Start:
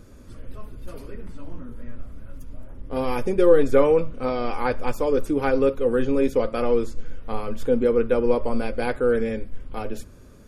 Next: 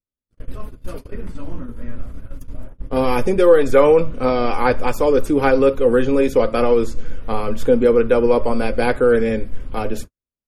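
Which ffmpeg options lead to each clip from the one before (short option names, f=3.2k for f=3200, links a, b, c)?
-filter_complex "[0:a]agate=range=-57dB:threshold=-33dB:ratio=16:detection=peak,acrossover=split=490|2400[a][b][c];[a]alimiter=limit=-18dB:level=0:latency=1[d];[d][b][c]amix=inputs=3:normalize=0,volume=7.5dB"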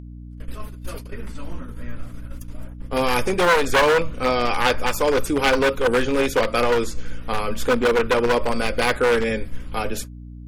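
-af "aeval=exprs='val(0)+0.0316*(sin(2*PI*60*n/s)+sin(2*PI*2*60*n/s)/2+sin(2*PI*3*60*n/s)/3+sin(2*PI*4*60*n/s)/4+sin(2*PI*5*60*n/s)/5)':c=same,aeval=exprs='0.355*(abs(mod(val(0)/0.355+3,4)-2)-1)':c=same,tiltshelf=f=970:g=-6"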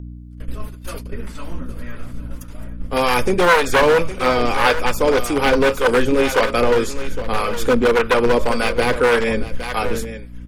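-filter_complex "[0:a]aecho=1:1:812:0.251,acrossover=split=560[a][b];[a]aeval=exprs='val(0)*(1-0.5/2+0.5/2*cos(2*PI*1.8*n/s))':c=same[c];[b]aeval=exprs='val(0)*(1-0.5/2-0.5/2*cos(2*PI*1.8*n/s))':c=same[d];[c][d]amix=inputs=2:normalize=0,acrossover=split=2500[e][f];[f]asoftclip=type=tanh:threshold=-26dB[g];[e][g]amix=inputs=2:normalize=0,volume=5.5dB"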